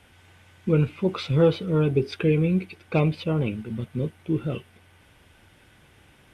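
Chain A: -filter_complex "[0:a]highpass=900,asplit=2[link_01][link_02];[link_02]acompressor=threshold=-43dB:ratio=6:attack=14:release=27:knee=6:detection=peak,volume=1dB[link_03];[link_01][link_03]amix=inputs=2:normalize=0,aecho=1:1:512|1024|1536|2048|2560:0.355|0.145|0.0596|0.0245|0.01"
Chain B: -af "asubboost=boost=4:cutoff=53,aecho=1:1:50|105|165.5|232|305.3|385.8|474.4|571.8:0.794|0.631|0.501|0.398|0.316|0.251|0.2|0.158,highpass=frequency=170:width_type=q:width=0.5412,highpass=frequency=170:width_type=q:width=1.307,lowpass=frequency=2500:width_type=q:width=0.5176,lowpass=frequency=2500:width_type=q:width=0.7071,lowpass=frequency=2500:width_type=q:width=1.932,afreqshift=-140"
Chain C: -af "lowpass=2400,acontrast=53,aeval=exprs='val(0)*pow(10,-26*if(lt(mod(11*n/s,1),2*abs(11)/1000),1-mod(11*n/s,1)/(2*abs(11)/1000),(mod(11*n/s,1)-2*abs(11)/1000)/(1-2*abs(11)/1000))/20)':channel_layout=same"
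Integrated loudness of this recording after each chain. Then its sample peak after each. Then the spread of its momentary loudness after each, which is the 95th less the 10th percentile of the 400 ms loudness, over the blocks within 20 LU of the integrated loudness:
−32.5, −23.5, −27.0 LKFS; −12.5, −6.0, −5.5 dBFS; 20, 12, 11 LU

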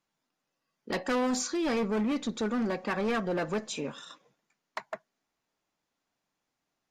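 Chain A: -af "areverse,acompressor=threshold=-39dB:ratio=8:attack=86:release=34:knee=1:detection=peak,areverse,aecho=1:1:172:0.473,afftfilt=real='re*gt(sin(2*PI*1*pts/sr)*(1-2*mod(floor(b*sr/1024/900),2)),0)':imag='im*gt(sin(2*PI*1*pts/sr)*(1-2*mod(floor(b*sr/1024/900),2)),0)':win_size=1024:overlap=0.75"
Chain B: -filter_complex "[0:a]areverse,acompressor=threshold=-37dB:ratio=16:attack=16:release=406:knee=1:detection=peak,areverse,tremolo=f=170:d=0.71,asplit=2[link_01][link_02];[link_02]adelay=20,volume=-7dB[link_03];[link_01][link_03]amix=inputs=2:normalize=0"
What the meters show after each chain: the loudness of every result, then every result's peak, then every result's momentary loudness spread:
−39.0, −43.5 LKFS; −23.5, −26.5 dBFS; 12, 9 LU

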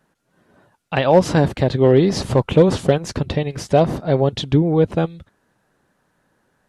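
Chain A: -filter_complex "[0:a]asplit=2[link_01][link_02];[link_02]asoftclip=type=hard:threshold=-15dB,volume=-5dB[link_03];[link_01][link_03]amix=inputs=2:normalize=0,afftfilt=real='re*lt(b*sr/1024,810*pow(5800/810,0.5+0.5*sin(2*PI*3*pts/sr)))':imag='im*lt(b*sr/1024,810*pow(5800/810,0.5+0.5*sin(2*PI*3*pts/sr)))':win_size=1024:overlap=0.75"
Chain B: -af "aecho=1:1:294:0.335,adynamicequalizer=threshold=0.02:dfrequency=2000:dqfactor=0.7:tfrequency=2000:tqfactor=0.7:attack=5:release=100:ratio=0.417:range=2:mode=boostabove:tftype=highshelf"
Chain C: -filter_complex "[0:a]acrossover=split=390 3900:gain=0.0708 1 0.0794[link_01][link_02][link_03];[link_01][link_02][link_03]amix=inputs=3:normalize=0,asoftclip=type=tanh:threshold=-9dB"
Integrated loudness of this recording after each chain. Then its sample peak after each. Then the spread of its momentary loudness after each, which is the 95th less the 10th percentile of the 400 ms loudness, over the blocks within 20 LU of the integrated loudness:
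−15.0, −17.0, −23.5 LKFS; −1.0, −1.5, −9.5 dBFS; 8, 9, 10 LU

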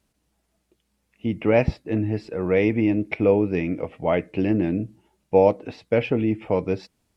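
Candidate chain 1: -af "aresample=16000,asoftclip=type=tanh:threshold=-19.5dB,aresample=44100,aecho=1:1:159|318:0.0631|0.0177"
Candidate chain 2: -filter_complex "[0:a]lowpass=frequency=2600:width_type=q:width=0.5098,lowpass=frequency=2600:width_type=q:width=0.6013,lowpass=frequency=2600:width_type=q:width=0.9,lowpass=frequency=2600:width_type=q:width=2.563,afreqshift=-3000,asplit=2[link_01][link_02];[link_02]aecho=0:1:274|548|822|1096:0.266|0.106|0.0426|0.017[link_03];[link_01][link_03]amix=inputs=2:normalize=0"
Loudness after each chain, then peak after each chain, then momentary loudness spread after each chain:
−27.5, −19.0 LKFS; −18.0, −4.0 dBFS; 7, 9 LU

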